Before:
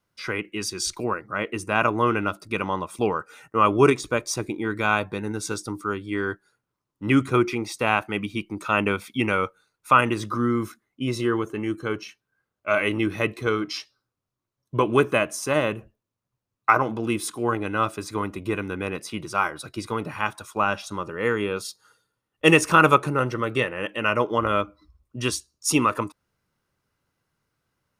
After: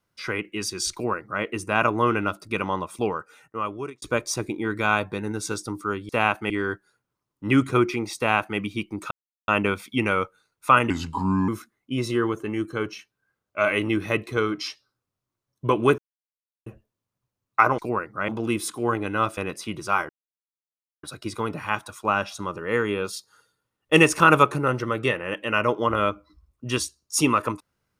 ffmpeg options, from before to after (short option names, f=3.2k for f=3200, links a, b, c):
-filter_complex "[0:a]asplit=13[a][b][c][d][e][f][g][h][i][j][k][l][m];[a]atrim=end=4.02,asetpts=PTS-STARTPTS,afade=t=out:st=2.8:d=1.22[n];[b]atrim=start=4.02:end=6.092,asetpts=PTS-STARTPTS,afade=t=in:d=0.004:c=hsin[o];[c]atrim=start=7.758:end=8.172[p];[d]atrim=start=6.088:end=8.7,asetpts=PTS-STARTPTS,afade=t=out:st=2.608:d=0.004:c=hsin,apad=pad_dur=0.37[q];[e]atrim=start=8.7:end=10.124,asetpts=PTS-STARTPTS,afade=t=in:d=0.004:c=hsin[r];[f]atrim=start=10.12:end=10.58,asetpts=PTS-STARTPTS,asetrate=34839,aresample=44100,atrim=end_sample=25678,asetpts=PTS-STARTPTS[s];[g]atrim=start=10.576:end=15.08,asetpts=PTS-STARTPTS,afade=t=out:st=4.5:d=0.004:c=hsin[t];[h]atrim=start=15.08:end=15.76,asetpts=PTS-STARTPTS,volume=0[u];[i]atrim=start=15.76:end=16.882,asetpts=PTS-STARTPTS,afade=t=in:d=0.004:c=hsin[v];[j]atrim=start=0.928:end=1.432[w];[k]atrim=start=16.878:end=17.972[x];[l]atrim=start=18.828:end=19.55,asetpts=PTS-STARTPTS,afade=t=out:st=0.718:d=0.004:c=hsin,apad=pad_dur=0.94[y];[m]atrim=start=19.55,asetpts=PTS-STARTPTS,afade=t=in:d=0.004:c=hsin[z];[n][o]concat=n=2:v=0:a=1[aa];[aa][p]acrossfade=d=0.004:c1=hsin:c2=hsin[ab];[q][r]concat=n=2:v=0:a=1[ac];[ab][ac]acrossfade=d=0.004:c1=hsin:c2=hsin[ad];[ad][s]acrossfade=d=0.004:c1=hsin:c2=hsin[ae];[t][u][v]concat=n=3:v=0:a=1[af];[ae][af]acrossfade=d=0.004:c1=hsin:c2=hsin[ag];[ag][w]acrossfade=d=0.004:c1=hsin:c2=hsin[ah];[ah][x]acrossfade=d=0.004:c1=hsin:c2=hsin[ai];[y][z]concat=n=2:v=0:a=1[aj];[ai][aj]acrossfade=d=0.004:c1=hsin:c2=hsin"